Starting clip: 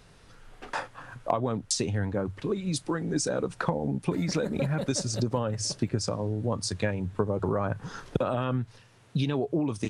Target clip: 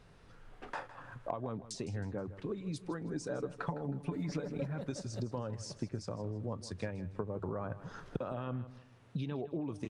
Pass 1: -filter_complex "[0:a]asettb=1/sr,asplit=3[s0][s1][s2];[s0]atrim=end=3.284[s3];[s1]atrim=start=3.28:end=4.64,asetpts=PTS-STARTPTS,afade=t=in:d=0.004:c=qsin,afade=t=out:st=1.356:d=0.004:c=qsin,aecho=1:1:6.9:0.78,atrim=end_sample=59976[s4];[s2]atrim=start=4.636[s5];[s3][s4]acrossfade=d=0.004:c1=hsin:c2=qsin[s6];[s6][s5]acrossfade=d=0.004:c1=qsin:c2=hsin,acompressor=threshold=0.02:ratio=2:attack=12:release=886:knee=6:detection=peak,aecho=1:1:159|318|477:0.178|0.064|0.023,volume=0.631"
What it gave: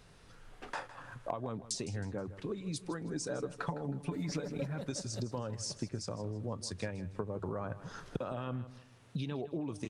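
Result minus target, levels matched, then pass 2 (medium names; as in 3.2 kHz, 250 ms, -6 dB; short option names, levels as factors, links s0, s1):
8 kHz band +7.0 dB
-filter_complex "[0:a]asettb=1/sr,asplit=3[s0][s1][s2];[s0]atrim=end=3.284[s3];[s1]atrim=start=3.28:end=4.64,asetpts=PTS-STARTPTS,afade=t=in:d=0.004:c=qsin,afade=t=out:st=1.356:d=0.004:c=qsin,aecho=1:1:6.9:0.78,atrim=end_sample=59976[s4];[s2]atrim=start=4.636[s5];[s3][s4]acrossfade=d=0.004:c1=hsin:c2=qsin[s6];[s6][s5]acrossfade=d=0.004:c1=qsin:c2=hsin,acompressor=threshold=0.02:ratio=2:attack=12:release=886:knee=6:detection=peak,highshelf=f=3600:g=-10,aecho=1:1:159|318|477:0.178|0.064|0.023,volume=0.631"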